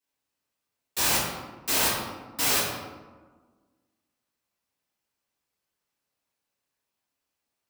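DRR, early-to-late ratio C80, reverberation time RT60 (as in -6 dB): -10.0 dB, 3.0 dB, 1.4 s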